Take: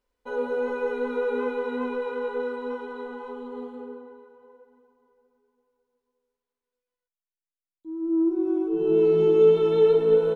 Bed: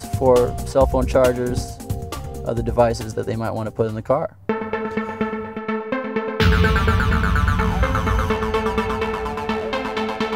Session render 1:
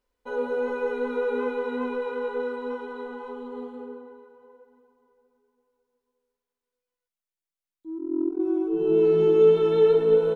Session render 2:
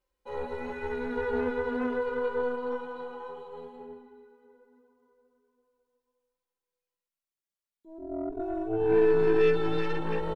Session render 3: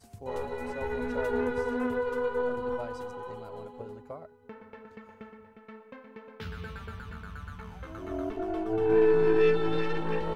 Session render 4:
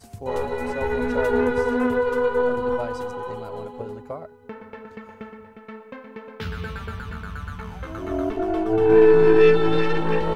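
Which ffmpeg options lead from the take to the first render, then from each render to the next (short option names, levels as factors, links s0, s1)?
-filter_complex "[0:a]asettb=1/sr,asplit=3[s0][s1][s2];[s0]atrim=end=7.984[s3];[s1]atrim=start=7.98:end=8.4,asetpts=PTS-STARTPTS,afade=t=in:d=0.004:c=qsin,afade=t=out:st=0.416:d=0.004:c=qsin,tremolo=f=43:d=0.974[s4];[s2]atrim=start=8.396[s5];[s3][s4]acrossfade=d=0.004:c1=hsin:c2=qsin[s6];[s6][s5]acrossfade=d=0.004:c1=qsin:c2=hsin,asettb=1/sr,asplit=3[s7][s8][s9];[s7]atrim=end=9.044[s10];[s8]atrim=start=9.04:end=10.04,asetpts=PTS-STARTPTS,afade=t=in:d=0.004:c=qsin,afade=t=out:st=0.996:d=0.004:c=qsin,equalizer=f=1600:w=6.1:g=9[s11];[s9]atrim=start=10.036[s12];[s10][s11]acrossfade=d=0.004:c1=hsin:c2=qsin[s13];[s13][s12]acrossfade=d=0.004:c1=qsin:c2=hsin"
-filter_complex "[0:a]aeval=exprs='0.376*(cos(1*acos(clip(val(0)/0.376,-1,1)))-cos(1*PI/2))+0.0299*(cos(8*acos(clip(val(0)/0.376,-1,1)))-cos(8*PI/2))':c=same,asplit=2[s0][s1];[s1]adelay=3.3,afreqshift=0.3[s2];[s0][s2]amix=inputs=2:normalize=1"
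-filter_complex "[1:a]volume=0.0631[s0];[0:a][s0]amix=inputs=2:normalize=0"
-af "volume=2.66"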